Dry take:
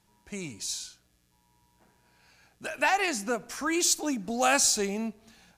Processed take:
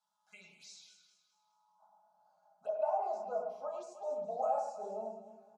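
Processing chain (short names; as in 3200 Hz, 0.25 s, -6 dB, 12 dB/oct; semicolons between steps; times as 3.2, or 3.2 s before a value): HPF 170 Hz 24 dB/oct; fixed phaser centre 770 Hz, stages 4; comb 4.8 ms, depth 57%; reverb RT60 0.40 s, pre-delay 6 ms, DRR 0.5 dB; compressor 2.5:1, threshold -36 dBFS, peak gain reduction 12.5 dB; envelope phaser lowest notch 390 Hz, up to 3400 Hz, full sweep at -31.5 dBFS; band-pass sweep 2000 Hz -> 630 Hz, 1.12–2.16; dynamic EQ 790 Hz, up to +4 dB, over -48 dBFS, Q 0.78; echo with dull and thin repeats by turns 0.104 s, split 2400 Hz, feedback 62%, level -6 dB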